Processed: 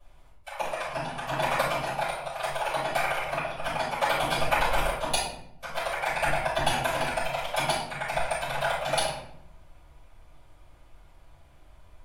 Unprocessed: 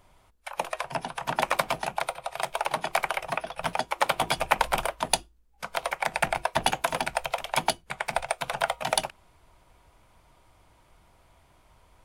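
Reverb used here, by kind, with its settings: shoebox room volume 150 m³, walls mixed, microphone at 5.7 m; gain -15.5 dB

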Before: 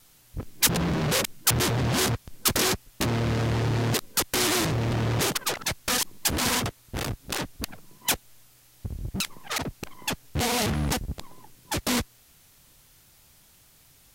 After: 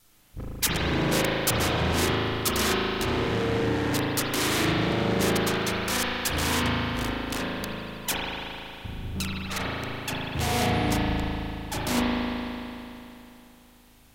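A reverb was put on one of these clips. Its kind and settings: spring tank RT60 3.1 s, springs 37 ms, chirp 45 ms, DRR -6 dB; gain -4.5 dB

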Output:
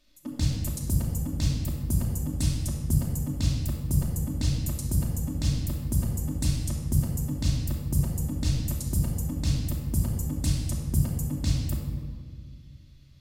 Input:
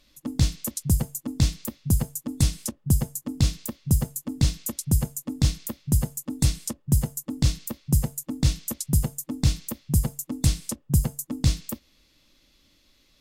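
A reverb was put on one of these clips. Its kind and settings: shoebox room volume 2400 m³, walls mixed, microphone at 2.7 m; gain -8 dB

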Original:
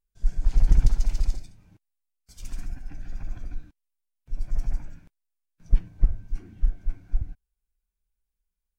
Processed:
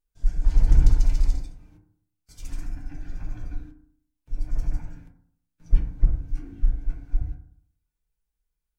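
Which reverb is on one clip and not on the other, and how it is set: FDN reverb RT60 0.62 s, low-frequency decay 1.1×, high-frequency decay 0.3×, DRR 0.5 dB; gain -1 dB

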